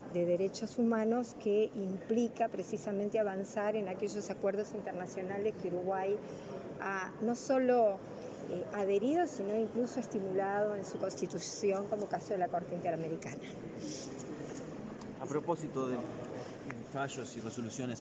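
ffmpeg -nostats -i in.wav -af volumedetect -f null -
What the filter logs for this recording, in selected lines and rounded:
mean_volume: -35.7 dB
max_volume: -18.9 dB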